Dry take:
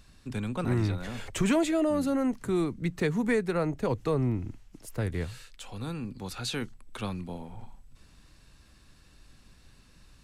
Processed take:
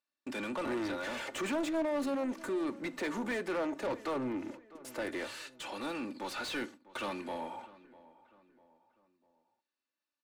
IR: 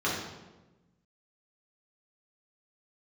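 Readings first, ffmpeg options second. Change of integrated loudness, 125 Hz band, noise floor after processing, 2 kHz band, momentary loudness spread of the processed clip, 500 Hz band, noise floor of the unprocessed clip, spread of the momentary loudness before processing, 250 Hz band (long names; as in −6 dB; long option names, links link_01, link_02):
−6.5 dB, −22.0 dB, below −85 dBFS, −1.0 dB, 10 LU, −5.0 dB, −58 dBFS, 15 LU, −7.0 dB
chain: -filter_complex "[0:a]highpass=370,agate=range=-39dB:threshold=-52dB:ratio=16:detection=peak,equalizer=frequency=1500:width=0.32:gain=-5,aecho=1:1:3.4:0.64,asoftclip=type=tanh:threshold=-30.5dB,asplit=2[link_01][link_02];[link_02]highpass=frequency=720:poles=1,volume=20dB,asoftclip=type=tanh:threshold=-30.5dB[link_03];[link_01][link_03]amix=inputs=2:normalize=0,lowpass=frequency=1900:poles=1,volume=-6dB,asplit=2[link_04][link_05];[link_05]adelay=649,lowpass=frequency=2200:poles=1,volume=-19dB,asplit=2[link_06][link_07];[link_07]adelay=649,lowpass=frequency=2200:poles=1,volume=0.44,asplit=2[link_08][link_09];[link_09]adelay=649,lowpass=frequency=2200:poles=1,volume=0.44[link_10];[link_04][link_06][link_08][link_10]amix=inputs=4:normalize=0,asplit=2[link_11][link_12];[1:a]atrim=start_sample=2205,atrim=end_sample=4410[link_13];[link_12][link_13]afir=irnorm=-1:irlink=0,volume=-25.5dB[link_14];[link_11][link_14]amix=inputs=2:normalize=0,volume=1.5dB"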